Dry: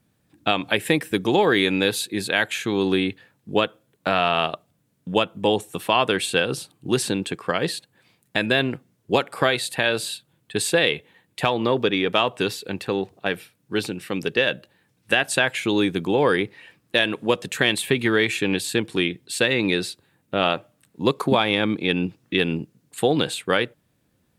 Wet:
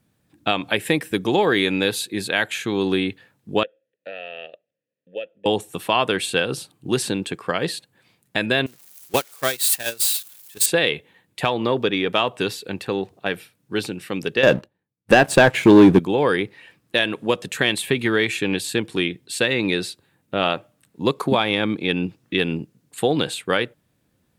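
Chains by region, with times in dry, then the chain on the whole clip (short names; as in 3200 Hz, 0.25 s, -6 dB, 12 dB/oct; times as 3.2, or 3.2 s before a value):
3.63–5.46 vowel filter e + bell 840 Hz -3.5 dB 2.4 oct
8.66–10.66 switching spikes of -12.5 dBFS + gate -18 dBFS, range -24 dB
14.43–15.99 expander -53 dBFS + tilt shelf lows +7.5 dB, about 1400 Hz + sample leveller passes 2
whole clip: dry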